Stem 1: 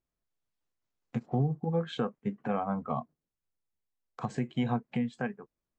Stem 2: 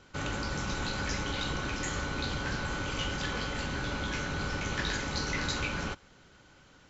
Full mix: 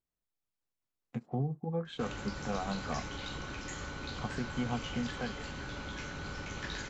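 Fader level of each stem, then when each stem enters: -5.0, -7.5 dB; 0.00, 1.85 s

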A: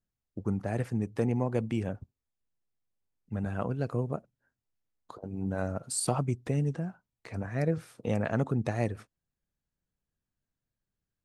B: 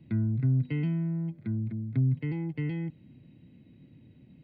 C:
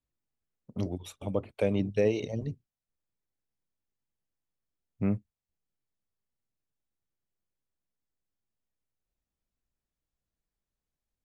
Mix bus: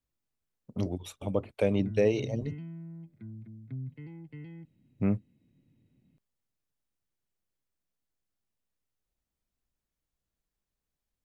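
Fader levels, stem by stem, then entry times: off, -13.0 dB, +1.0 dB; off, 1.75 s, 0.00 s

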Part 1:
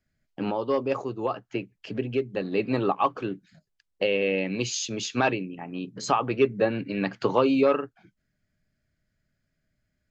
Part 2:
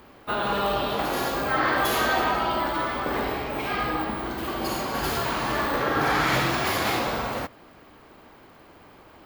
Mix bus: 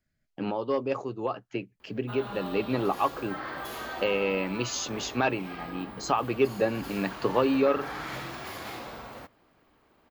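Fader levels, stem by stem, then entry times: -2.5, -14.0 dB; 0.00, 1.80 s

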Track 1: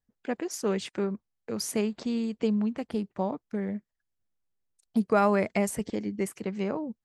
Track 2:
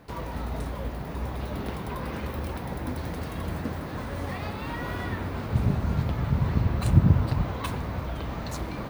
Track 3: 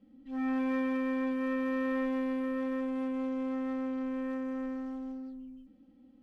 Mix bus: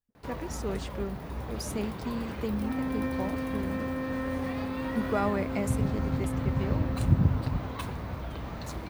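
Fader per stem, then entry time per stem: -6.0, -4.5, -2.0 dB; 0.00, 0.15, 2.30 s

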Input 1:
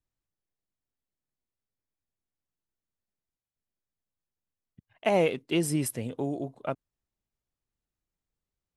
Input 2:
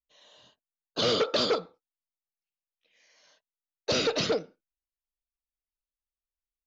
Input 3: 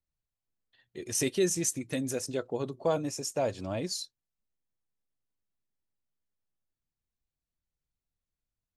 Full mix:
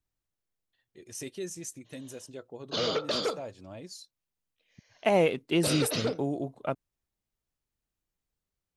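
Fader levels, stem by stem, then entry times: +0.5, -4.0, -10.5 dB; 0.00, 1.75, 0.00 s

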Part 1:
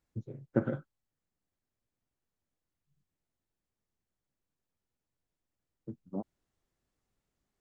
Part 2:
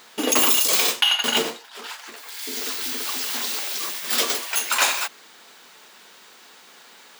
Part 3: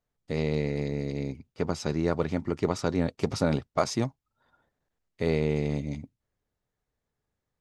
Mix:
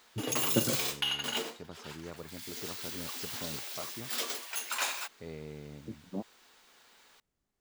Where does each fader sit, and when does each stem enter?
-0.5, -13.0, -18.0 dB; 0.00, 0.00, 0.00 s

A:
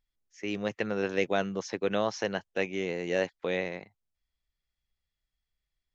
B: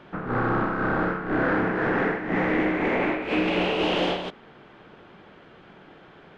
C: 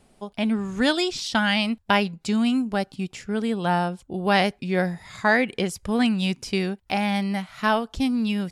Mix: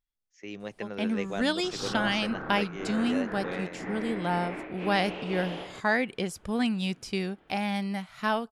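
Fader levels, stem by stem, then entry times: -7.0, -13.5, -6.0 dB; 0.00, 1.50, 0.60 s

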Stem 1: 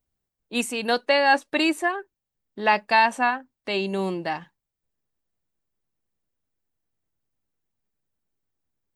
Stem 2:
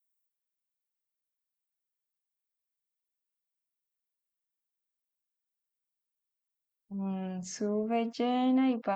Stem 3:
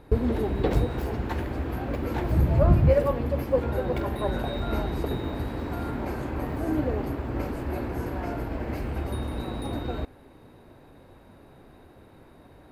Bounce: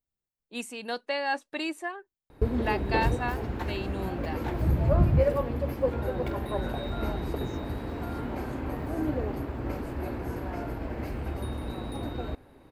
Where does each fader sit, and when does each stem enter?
-10.5, -18.0, -3.0 dB; 0.00, 0.00, 2.30 s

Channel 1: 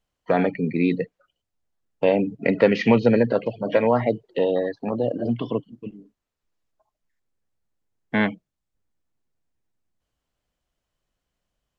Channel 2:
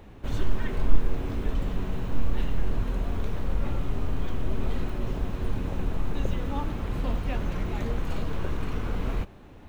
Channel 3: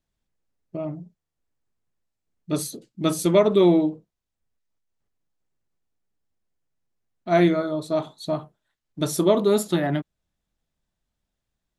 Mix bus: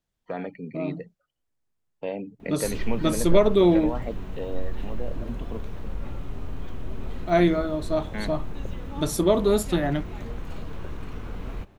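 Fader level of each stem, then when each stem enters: -12.5, -5.5, -1.5 dB; 0.00, 2.40, 0.00 s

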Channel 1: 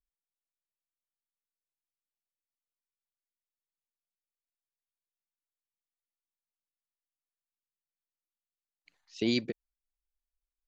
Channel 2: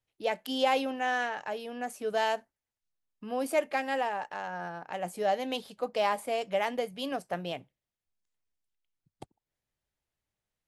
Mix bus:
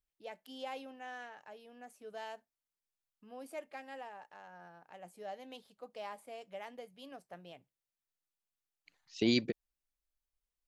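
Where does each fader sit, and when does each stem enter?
-0.5, -16.5 dB; 0.00, 0.00 s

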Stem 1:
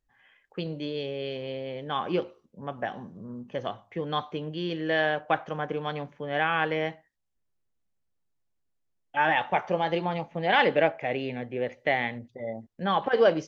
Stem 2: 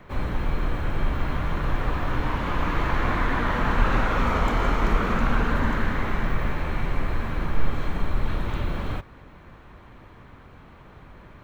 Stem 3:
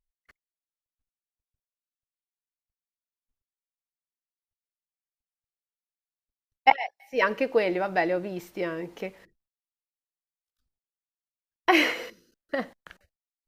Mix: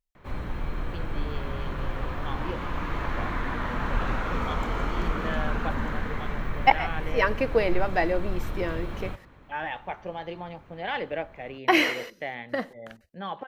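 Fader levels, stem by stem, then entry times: -9.0, -6.0, 0.0 dB; 0.35, 0.15, 0.00 s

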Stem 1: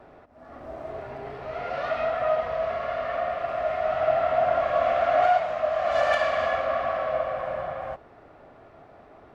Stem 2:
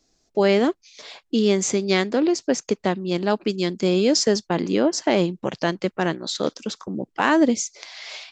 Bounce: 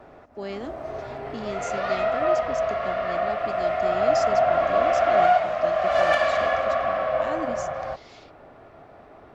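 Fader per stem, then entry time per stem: +2.5, -16.0 dB; 0.00, 0.00 s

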